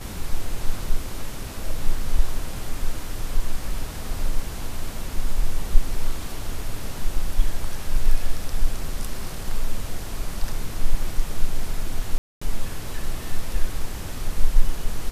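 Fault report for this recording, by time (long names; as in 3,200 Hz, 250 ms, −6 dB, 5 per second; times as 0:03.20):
0:12.18–0:12.41: drop-out 235 ms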